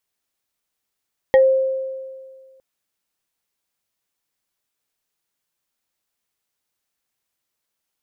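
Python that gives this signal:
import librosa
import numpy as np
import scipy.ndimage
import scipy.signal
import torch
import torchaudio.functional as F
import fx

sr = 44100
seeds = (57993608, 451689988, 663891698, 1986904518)

y = fx.fm2(sr, length_s=1.26, level_db=-7.5, carrier_hz=529.0, ratio=2.55, index=0.66, index_s=0.15, decay_s=1.82, shape='exponential')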